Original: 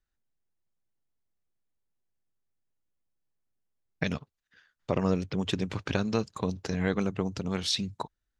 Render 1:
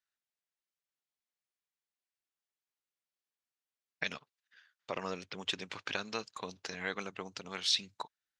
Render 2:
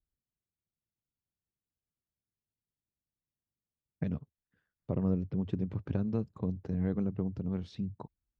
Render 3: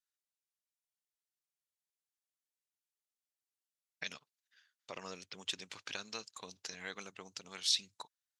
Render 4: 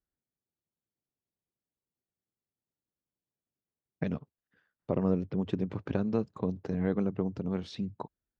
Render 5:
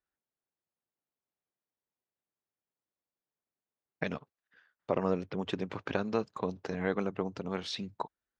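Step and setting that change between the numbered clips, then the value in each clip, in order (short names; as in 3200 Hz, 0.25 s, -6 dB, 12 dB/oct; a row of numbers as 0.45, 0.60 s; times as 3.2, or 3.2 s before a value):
band-pass, frequency: 3100, 100, 8000, 260, 740 Hz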